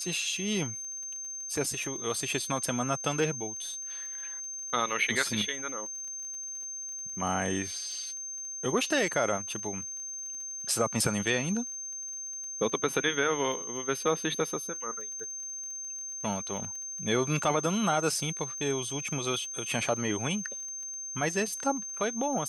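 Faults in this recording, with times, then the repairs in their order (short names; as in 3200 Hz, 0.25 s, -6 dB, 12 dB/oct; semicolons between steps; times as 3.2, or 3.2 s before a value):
crackle 29/s -40 dBFS
tone 6300 Hz -36 dBFS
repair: de-click; notch 6300 Hz, Q 30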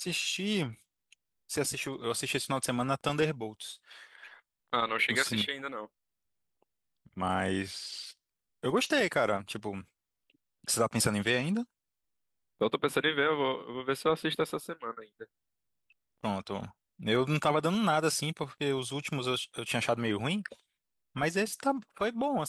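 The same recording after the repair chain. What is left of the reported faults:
none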